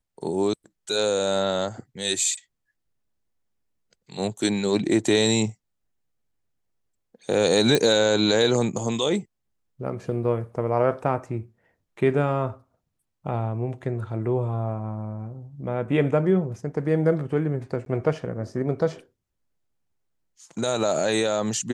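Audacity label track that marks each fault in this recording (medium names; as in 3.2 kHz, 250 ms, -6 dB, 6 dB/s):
7.750000	7.750000	pop
17.850000	17.860000	dropout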